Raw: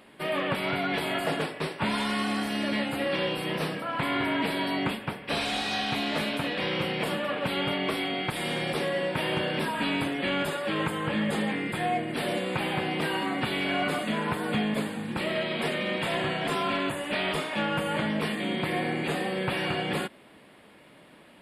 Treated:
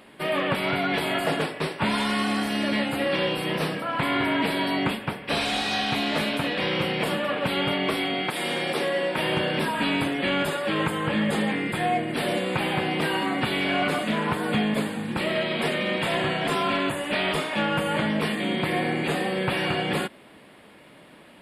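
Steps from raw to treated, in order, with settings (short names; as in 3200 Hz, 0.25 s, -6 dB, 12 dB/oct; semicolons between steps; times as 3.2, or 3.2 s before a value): 8.28–9.18 HPF 220 Hz 12 dB/oct; 13.62–14.43 Doppler distortion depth 0.11 ms; gain +3.5 dB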